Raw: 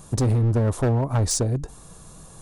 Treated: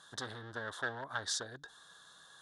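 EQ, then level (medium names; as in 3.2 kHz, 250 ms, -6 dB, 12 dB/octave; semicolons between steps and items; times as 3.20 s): two resonant band-passes 2.4 kHz, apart 1.1 oct; +5.5 dB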